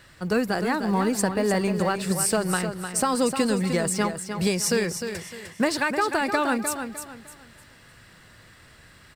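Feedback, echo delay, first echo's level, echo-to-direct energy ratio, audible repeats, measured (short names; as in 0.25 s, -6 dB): 31%, 0.304 s, -8.0 dB, -7.5 dB, 3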